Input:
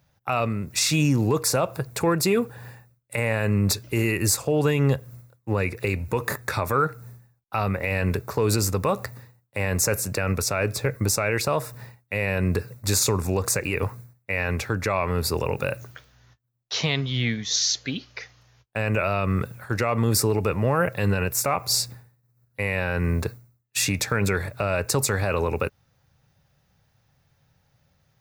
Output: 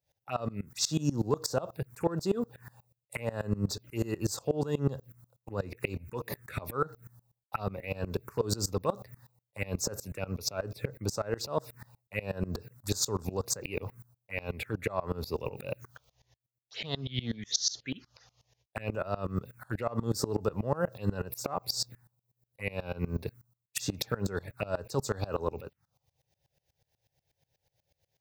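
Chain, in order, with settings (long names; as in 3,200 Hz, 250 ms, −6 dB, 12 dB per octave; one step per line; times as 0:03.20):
low-shelf EQ 91 Hz −8.5 dB
phaser swept by the level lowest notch 210 Hz, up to 2,300 Hz, full sweep at −21 dBFS
tremolo with a ramp in dB swelling 8.2 Hz, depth 23 dB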